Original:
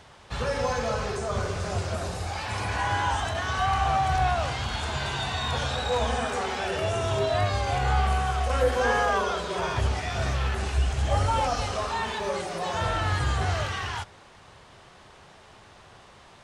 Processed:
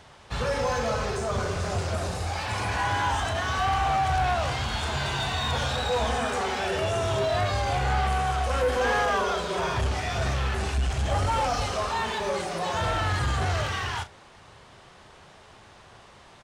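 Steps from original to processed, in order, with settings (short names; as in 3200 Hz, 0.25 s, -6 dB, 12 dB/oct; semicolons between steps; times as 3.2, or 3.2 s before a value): in parallel at -7 dB: crossover distortion -38 dBFS; on the sum: doubler 36 ms -12 dB; soft clip -19.5 dBFS, distortion -13 dB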